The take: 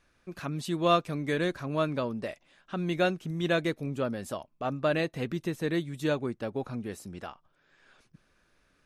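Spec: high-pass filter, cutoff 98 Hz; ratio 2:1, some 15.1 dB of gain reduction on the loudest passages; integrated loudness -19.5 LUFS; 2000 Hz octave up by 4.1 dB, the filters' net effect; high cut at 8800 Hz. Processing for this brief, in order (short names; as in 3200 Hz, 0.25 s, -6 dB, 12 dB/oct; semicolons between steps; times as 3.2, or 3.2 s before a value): HPF 98 Hz; LPF 8800 Hz; bell 2000 Hz +5.5 dB; compressor 2:1, threshold -47 dBFS; gain +23 dB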